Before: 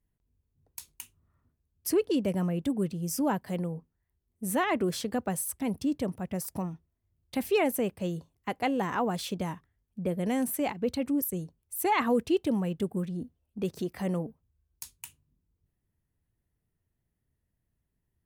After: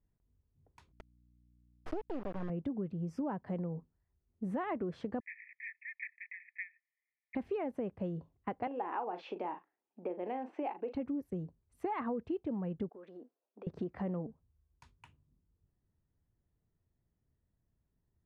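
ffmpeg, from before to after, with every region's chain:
ffmpeg -i in.wav -filter_complex "[0:a]asettb=1/sr,asplit=3[link_01][link_02][link_03];[link_01]atrim=end=0.924[link_04];[link_02]atrim=start=0.92:end=2.5,asetpts=PTS-STARTPTS,afade=type=in:duration=0.004:curve=qsin,afade=type=out:start_time=1.576:duration=0.004:curve=qsin,acrusher=bits=3:dc=4:mix=0:aa=0.000001,aeval=exprs='val(0)+0.000501*(sin(2*PI*60*n/s)+sin(2*PI*2*60*n/s)/2+sin(2*PI*3*60*n/s)/3+sin(2*PI*4*60*n/s)/4+sin(2*PI*5*60*n/s)/5)':channel_layout=same[link_05];[link_03]atrim=start=2.496[link_06];[link_04][link_05]acrossfade=duration=0.004:curve1=hsin:curve2=qsin[link_07];[link_07][link_06]acrossfade=duration=0.004:curve1=qsin:curve2=hsin,asettb=1/sr,asplit=3[link_08][link_09][link_10];[link_08]atrim=end=5.204[link_11];[link_09]atrim=start=5.2:end=7.35,asetpts=PTS-STARTPTS,afade=type=in:duration=0.004:curve=qsin,afade=type=out:start_time=2.146:duration=0.004:curve=qsin,aeval=exprs='0.112*sin(PI/2*5.01*val(0)/0.112)':channel_layout=same,asuperpass=centerf=2100:order=20:qfactor=2.7[link_12];[link_10]atrim=start=7.346[link_13];[link_11][link_12]acrossfade=duration=0.004:curve1=hsin:curve2=qsin[link_14];[link_14][link_13]acrossfade=duration=0.004:curve1=qsin:curve2=hsin,asettb=1/sr,asplit=3[link_15][link_16][link_17];[link_15]atrim=end=8.674[link_18];[link_16]atrim=start=8.67:end=10.95,asetpts=PTS-STARTPTS,afade=type=in:duration=0.004:curve=qsin,afade=type=out:start_time=2.276:duration=0.004:curve=qsin,acompressor=threshold=-36dB:ratio=1.5:attack=3.2:release=140:knee=1:detection=peak,highpass=frequency=320:width=0.5412,highpass=frequency=320:width=1.3066,equalizer=frequency=330:width_type=q:width=4:gain=6,equalizer=frequency=830:width_type=q:width=4:gain=10,equalizer=frequency=2600:width_type=q:width=4:gain=9,lowpass=frequency=6200:width=0.5412,lowpass=frequency=6200:width=1.3066,asplit=2[link_19][link_20];[link_20]adelay=39,volume=-10.5dB[link_21];[link_19][link_21]amix=inputs=2:normalize=0,atrim=end_sample=100548[link_22];[link_17]atrim=start=10.946[link_23];[link_18][link_22]acrossfade=duration=0.004:curve1=hsin:curve2=qsin[link_24];[link_24][link_23]acrossfade=duration=0.004:curve1=qsin:curve2=hsin,asettb=1/sr,asplit=3[link_25][link_26][link_27];[link_25]atrim=end=12.894[link_28];[link_26]atrim=start=12.89:end=13.67,asetpts=PTS-STARTPTS,afade=type=in:duration=0.004:curve=qsin,afade=type=out:start_time=0.776:duration=0.004:curve=qsin,highpass=frequency=390:width=0.5412,highpass=frequency=390:width=1.3066,acompressor=threshold=-45dB:ratio=12:attack=3.2:release=140:knee=1:detection=peak[link_29];[link_27]atrim=start=13.666[link_30];[link_28][link_29]acrossfade=duration=0.004:curve1=hsin:curve2=qsin[link_31];[link_31][link_30]acrossfade=duration=0.004:curve1=qsin:curve2=hsin,lowpass=1400,acompressor=threshold=-34dB:ratio=6" out.wav

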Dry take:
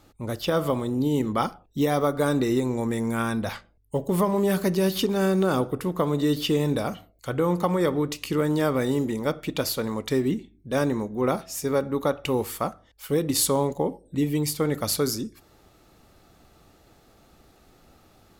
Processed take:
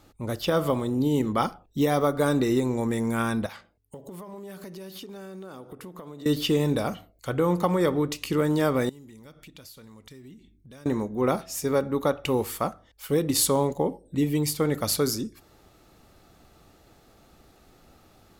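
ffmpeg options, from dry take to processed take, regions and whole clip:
ffmpeg -i in.wav -filter_complex "[0:a]asettb=1/sr,asplit=3[link_01][link_02][link_03];[link_01]atrim=end=3.464[link_04];[link_02]atrim=start=3.46:end=6.26,asetpts=PTS-STARTPTS,afade=type=in:duration=0.004:curve=qsin,afade=type=out:start_time=2.796:duration=0.004:curve=qsin,highpass=frequency=150:poles=1,acompressor=threshold=-38dB:ratio=8:attack=3.2:release=140:knee=1:detection=peak[link_05];[link_03]atrim=start=6.256[link_06];[link_04][link_05]acrossfade=duration=0.004:curve1=hsin:curve2=qsin[link_07];[link_07][link_06]acrossfade=duration=0.004:curve1=qsin:curve2=hsin,asettb=1/sr,asplit=3[link_08][link_09][link_10];[link_08]atrim=end=8.894[link_11];[link_09]atrim=start=8.89:end=10.86,asetpts=PTS-STARTPTS,afade=type=in:duration=0.004:curve=qsin,afade=type=out:start_time=1.966:duration=0.004:curve=qsin,equalizer=frequency=590:width=0.4:gain=-9.5,acompressor=threshold=-47dB:ratio=4:attack=3.2:release=140:knee=1:detection=peak[link_12];[link_10]atrim=start=10.856[link_13];[link_11][link_12]acrossfade=duration=0.004:curve1=hsin:curve2=qsin[link_14];[link_14][link_13]acrossfade=duration=0.004:curve1=qsin:curve2=hsin" out.wav

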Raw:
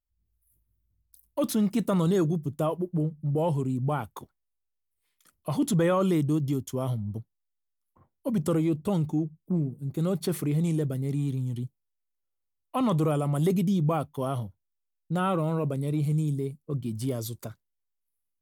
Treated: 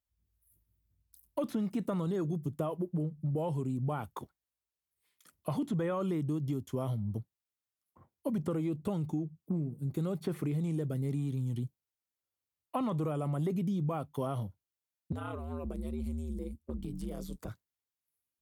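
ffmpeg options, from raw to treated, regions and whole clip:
ffmpeg -i in.wav -filter_complex "[0:a]asettb=1/sr,asplit=3[link_01][link_02][link_03];[link_01]atrim=end=15.124[link_04];[link_02]atrim=start=15.12:end=17.48,asetpts=PTS-STARTPTS,afade=type=in:duration=0.004:curve=qsin,afade=type=out:start_time=2.356:duration=0.004:curve=qsin,acompressor=threshold=-33dB:ratio=6:attack=3.2:release=140:knee=1:detection=peak,aeval=exprs='val(0)*sin(2*PI*78*n/s)':channel_layout=same,lowshelf=frequency=91:gain=8.5[link_05];[link_03]atrim=start=17.476[link_06];[link_04][link_05]acrossfade=duration=0.004:curve1=hsin:curve2=qsin[link_07];[link_07][link_06]acrossfade=duration=0.004:curve1=qsin:curve2=hsin,acrossover=split=2600[link_08][link_09];[link_09]acompressor=threshold=-49dB:ratio=4:attack=1:release=60[link_10];[link_08][link_10]amix=inputs=2:normalize=0,highpass=54,acompressor=threshold=-30dB:ratio=6" out.wav

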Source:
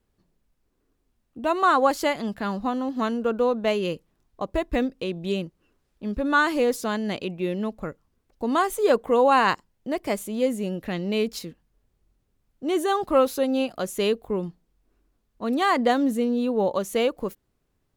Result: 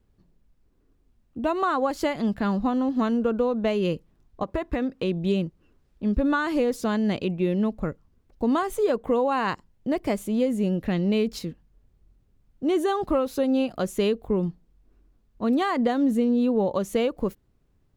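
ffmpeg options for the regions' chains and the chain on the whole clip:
ffmpeg -i in.wav -filter_complex "[0:a]asettb=1/sr,asplit=3[link_01][link_02][link_03];[link_01]atrim=end=4.434[link_04];[link_02]atrim=start=4.43:end=5.03,asetpts=PTS-STARTPTS,afade=type=in:duration=0.004:curve=qsin,afade=type=out:start_time=0.596:duration=0.004:curve=qsin,highpass=frequency=110:poles=1,equalizer=frequency=1300:width_type=o:width=1.9:gain=7,acompressor=threshold=-26dB:ratio=4:attack=3.2:release=140:knee=1:detection=peak[link_05];[link_03]atrim=start=5.026[link_06];[link_04][link_05]acrossfade=duration=0.004:curve1=hsin:curve2=qsin[link_07];[link_07][link_06]acrossfade=duration=0.004:curve1=qsin:curve2=hsin,equalizer=frequency=13000:width_type=o:width=1.5:gain=-5,acompressor=threshold=-22dB:ratio=6,lowshelf=frequency=280:gain=9" out.wav

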